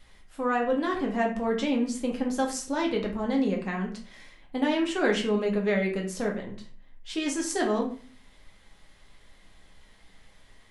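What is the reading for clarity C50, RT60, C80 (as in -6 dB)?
8.0 dB, 0.40 s, 13.0 dB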